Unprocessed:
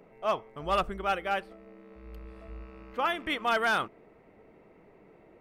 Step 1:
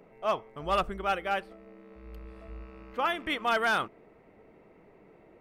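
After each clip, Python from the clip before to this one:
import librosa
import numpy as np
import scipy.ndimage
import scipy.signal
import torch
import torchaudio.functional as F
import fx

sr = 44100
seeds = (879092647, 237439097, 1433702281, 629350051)

y = x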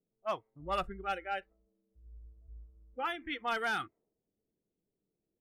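y = fx.env_lowpass(x, sr, base_hz=300.0, full_db=-23.0)
y = fx.noise_reduce_blind(y, sr, reduce_db=20)
y = y * librosa.db_to_amplitude(-6.0)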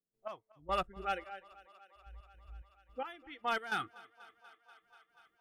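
y = fx.step_gate(x, sr, bpm=109, pattern='.x...x.xx.', floor_db=-12.0, edge_ms=4.5)
y = fx.echo_thinned(y, sr, ms=242, feedback_pct=83, hz=290.0, wet_db=-22)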